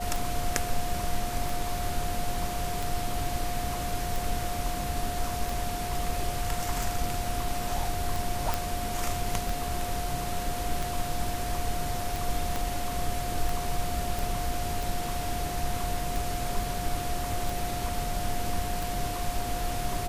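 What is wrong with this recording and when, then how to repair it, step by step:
scratch tick 45 rpm
whistle 710 Hz −34 dBFS
0:08.54: click
0:12.56: click
0:14.19: click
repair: click removal
notch filter 710 Hz, Q 30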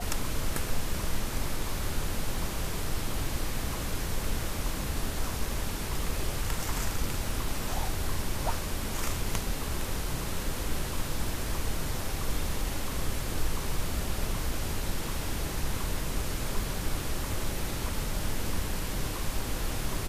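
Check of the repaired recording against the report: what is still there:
0:12.56: click

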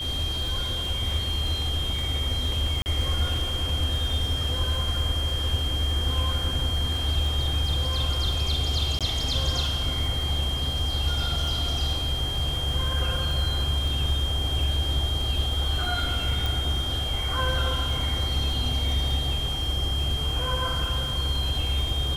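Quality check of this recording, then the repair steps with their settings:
surface crackle 34 per second −32 dBFS
whistle 3,200 Hz −29 dBFS
0:02.82–0:02.86: drop-out 39 ms
0:08.99–0:09.01: drop-out 17 ms
0:16.46: click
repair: click removal
notch filter 3,200 Hz, Q 30
repair the gap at 0:02.82, 39 ms
repair the gap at 0:08.99, 17 ms

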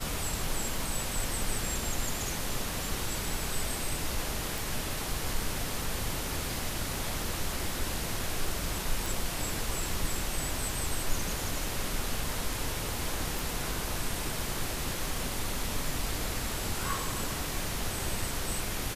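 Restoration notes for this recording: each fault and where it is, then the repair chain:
0:04.58: click
0:09.06: click
0:13.39: click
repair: click removal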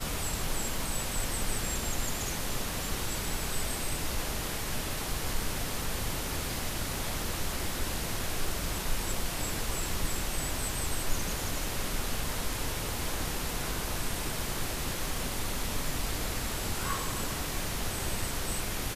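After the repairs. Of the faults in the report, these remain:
none of them is left

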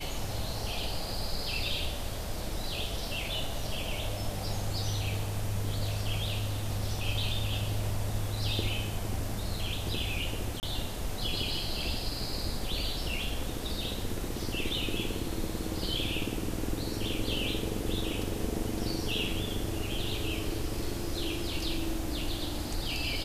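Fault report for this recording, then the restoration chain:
0:10.60–0:10.63: drop-out 29 ms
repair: repair the gap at 0:10.60, 29 ms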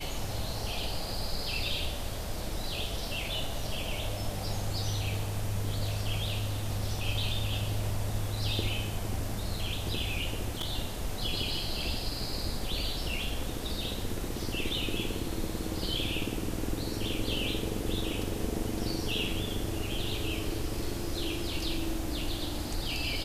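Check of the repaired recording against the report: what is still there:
none of them is left

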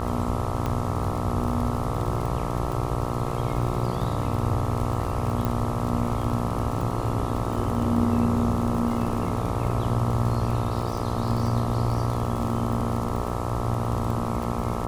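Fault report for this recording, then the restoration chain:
mains buzz 60 Hz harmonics 22 −30 dBFS
surface crackle 36 per second −29 dBFS
0:00.66: click −15 dBFS
0:05.45: click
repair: click removal
hum removal 60 Hz, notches 22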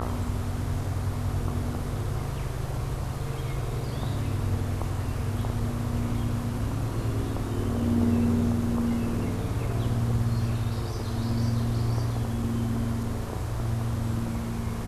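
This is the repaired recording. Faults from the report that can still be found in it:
none of them is left

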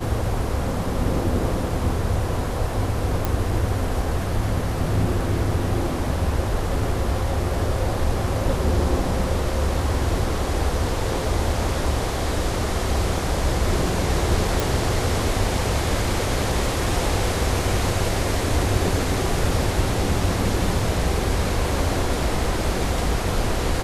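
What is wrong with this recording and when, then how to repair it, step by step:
0:03.25: click
0:14.60: click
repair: click removal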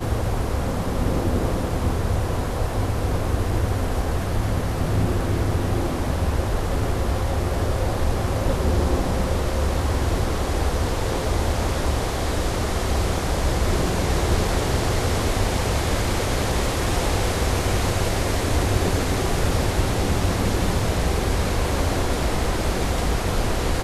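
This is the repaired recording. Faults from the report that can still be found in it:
none of them is left

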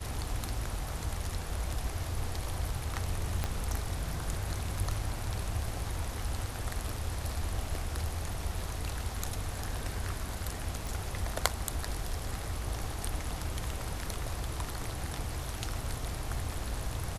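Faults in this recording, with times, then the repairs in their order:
0:03.44: click −16 dBFS
0:10.87: click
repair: click removal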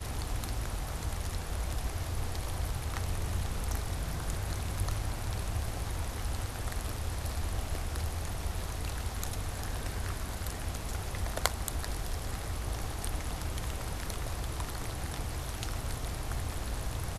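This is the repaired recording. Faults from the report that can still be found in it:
0:03.44: click

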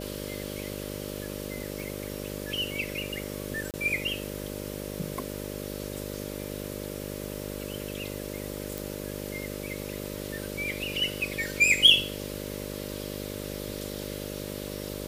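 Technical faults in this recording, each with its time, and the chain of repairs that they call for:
mains buzz 50 Hz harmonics 12 −37 dBFS
0:01.80: click
0:03.71–0:03.74: drop-out 28 ms
0:08.78: click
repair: click removal
hum removal 50 Hz, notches 12
repair the gap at 0:03.71, 28 ms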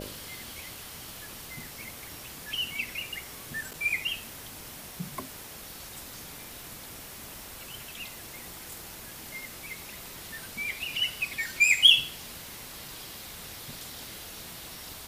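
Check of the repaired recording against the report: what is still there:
none of them is left

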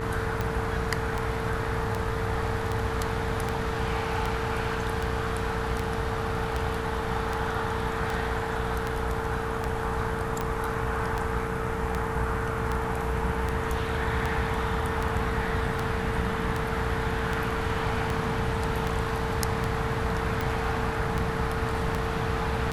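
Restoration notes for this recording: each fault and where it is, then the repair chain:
mains buzz 60 Hz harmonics 31 −34 dBFS
scratch tick 78 rpm −15 dBFS
whistle 450 Hz −33 dBFS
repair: click removal
hum removal 60 Hz, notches 31
notch filter 450 Hz, Q 30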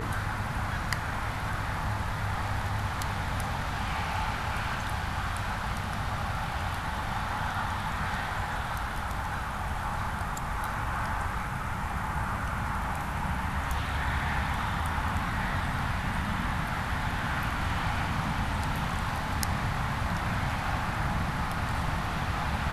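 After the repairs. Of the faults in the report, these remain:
none of them is left

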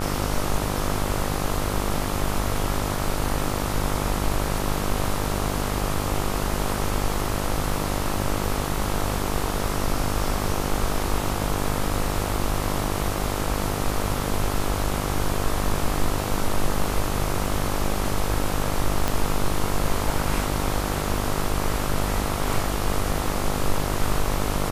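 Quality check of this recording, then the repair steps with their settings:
mains buzz 50 Hz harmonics 27 −28 dBFS
0:19.08: click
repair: click removal
hum removal 50 Hz, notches 27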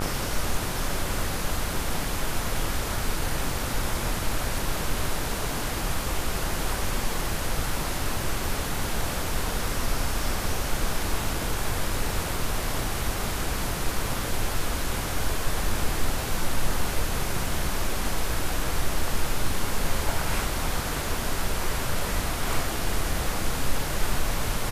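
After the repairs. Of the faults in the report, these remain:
none of them is left

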